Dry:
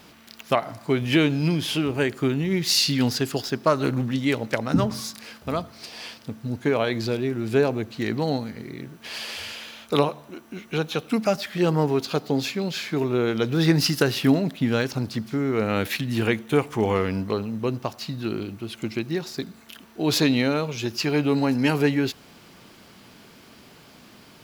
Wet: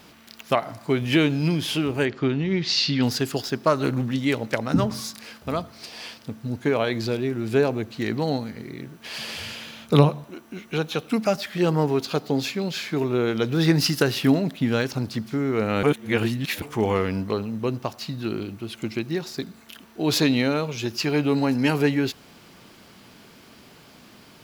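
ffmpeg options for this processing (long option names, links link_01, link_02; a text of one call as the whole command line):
ffmpeg -i in.wav -filter_complex "[0:a]asettb=1/sr,asplit=3[link_01][link_02][link_03];[link_01]atrim=end=2.054[link_04];[link_02]atrim=start=2.05:end=3.03,asetpts=PTS-STARTPTS,afade=type=in:duration=0.004:curve=qsin,afade=type=out:start_time=0.976:duration=0.004:curve=qsin,lowpass=frequency=5100:width=0.5412,lowpass=frequency=5100:width=1.3066[link_05];[link_03]atrim=start=3.026[link_06];[link_04][link_05]acrossfade=duration=0.004:curve1=hsin:curve2=qsin[link_07];[link_07][link_06]acrossfade=duration=0.004:curve1=qsin:curve2=hsin,asettb=1/sr,asplit=3[link_08][link_09][link_10];[link_08]atrim=end=9.184[link_11];[link_09]atrim=start=9.18:end=10.24,asetpts=PTS-STARTPTS,afade=type=in:duration=0.004:curve=qsin,afade=type=out:start_time=1.056:duration=0.004:curve=qsin,equalizer=frequency=140:width=0.9:gain=12.5[link_12];[link_10]atrim=start=10.236[link_13];[link_11][link_12]acrossfade=duration=0.004:curve1=hsin:curve2=qsin[link_14];[link_14][link_13]acrossfade=duration=0.004:curve1=qsin:curve2=hsin,asplit=3[link_15][link_16][link_17];[link_15]atrim=end=15.832[link_18];[link_16]atrim=start=15.828:end=16.622,asetpts=PTS-STARTPTS,areverse[link_19];[link_17]atrim=start=16.618[link_20];[link_18][link_19]acrossfade=duration=0.004:curve1=hsin:curve2=hsin[link_21];[link_21][link_20]acrossfade=duration=0.004:curve1=hsin:curve2=hsin" out.wav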